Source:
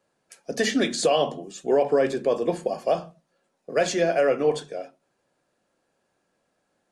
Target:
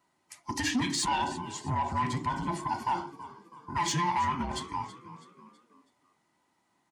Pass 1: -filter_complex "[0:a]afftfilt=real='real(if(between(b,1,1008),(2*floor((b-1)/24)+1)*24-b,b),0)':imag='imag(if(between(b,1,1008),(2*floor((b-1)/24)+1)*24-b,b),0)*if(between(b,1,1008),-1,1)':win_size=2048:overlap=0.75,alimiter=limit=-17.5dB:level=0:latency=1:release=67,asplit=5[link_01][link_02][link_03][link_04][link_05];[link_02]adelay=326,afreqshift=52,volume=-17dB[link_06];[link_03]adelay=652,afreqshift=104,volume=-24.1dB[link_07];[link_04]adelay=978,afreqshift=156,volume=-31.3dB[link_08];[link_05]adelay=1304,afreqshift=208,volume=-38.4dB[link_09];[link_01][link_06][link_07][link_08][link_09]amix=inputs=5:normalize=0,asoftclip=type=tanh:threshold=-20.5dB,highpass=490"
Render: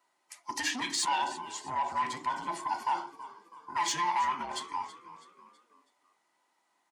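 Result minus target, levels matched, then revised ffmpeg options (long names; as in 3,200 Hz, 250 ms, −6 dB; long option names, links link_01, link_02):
125 Hz band −18.0 dB
-filter_complex "[0:a]afftfilt=real='real(if(between(b,1,1008),(2*floor((b-1)/24)+1)*24-b,b),0)':imag='imag(if(between(b,1,1008),(2*floor((b-1)/24)+1)*24-b,b),0)*if(between(b,1,1008),-1,1)':win_size=2048:overlap=0.75,alimiter=limit=-17.5dB:level=0:latency=1:release=67,asplit=5[link_01][link_02][link_03][link_04][link_05];[link_02]adelay=326,afreqshift=52,volume=-17dB[link_06];[link_03]adelay=652,afreqshift=104,volume=-24.1dB[link_07];[link_04]adelay=978,afreqshift=156,volume=-31.3dB[link_08];[link_05]adelay=1304,afreqshift=208,volume=-38.4dB[link_09];[link_01][link_06][link_07][link_08][link_09]amix=inputs=5:normalize=0,asoftclip=type=tanh:threshold=-20.5dB,highpass=130"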